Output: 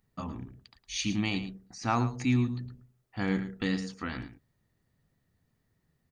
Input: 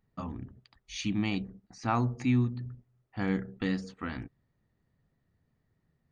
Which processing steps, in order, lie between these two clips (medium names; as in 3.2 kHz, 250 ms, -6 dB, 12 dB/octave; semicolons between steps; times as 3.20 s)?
treble shelf 3.3 kHz +8.5 dB; on a send: delay 110 ms -12 dB